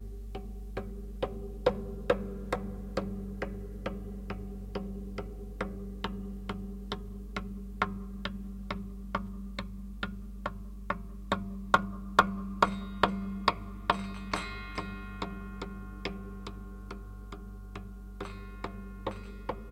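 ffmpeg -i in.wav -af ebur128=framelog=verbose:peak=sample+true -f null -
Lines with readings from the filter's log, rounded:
Integrated loudness:
  I:         -36.1 LUFS
  Threshold: -46.1 LUFS
Loudness range:
  LRA:        12.0 LU
  Threshold: -55.8 LUFS
  LRA low:   -42.7 LUFS
  LRA high:  -30.8 LUFS
Sample peak:
  Peak:       -8.7 dBFS
True peak:
  Peak:       -8.7 dBFS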